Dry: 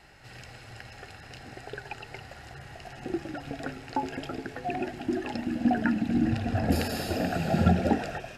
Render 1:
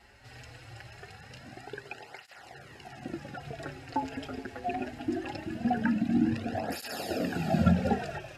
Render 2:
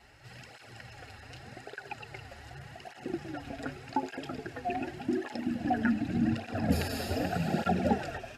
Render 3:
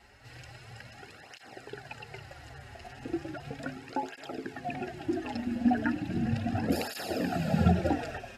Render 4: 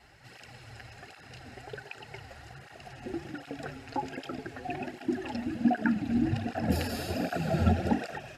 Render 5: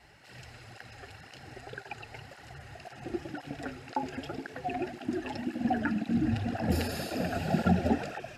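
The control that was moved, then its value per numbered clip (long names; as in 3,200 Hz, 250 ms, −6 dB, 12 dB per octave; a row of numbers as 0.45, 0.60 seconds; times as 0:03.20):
through-zero flanger with one copy inverted, nulls at: 0.22, 0.85, 0.36, 1.3, 1.9 Hertz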